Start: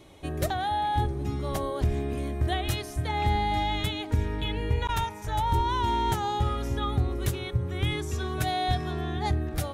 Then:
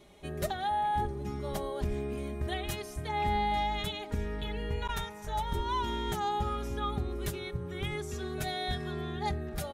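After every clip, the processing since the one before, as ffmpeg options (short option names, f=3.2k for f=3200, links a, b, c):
-af "aecho=1:1:4.9:0.63,volume=-6dB"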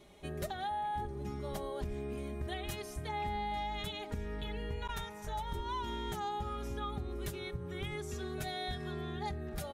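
-af "acompressor=threshold=-35dB:ratio=2.5,volume=-1.5dB"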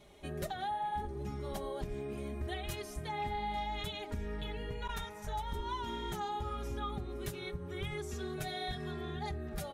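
-af "flanger=delay=1.2:depth=6.7:regen=-48:speed=0.76:shape=triangular,volume=4dB"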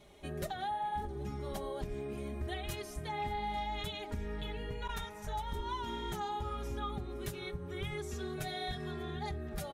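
-af "aecho=1:1:592:0.0668"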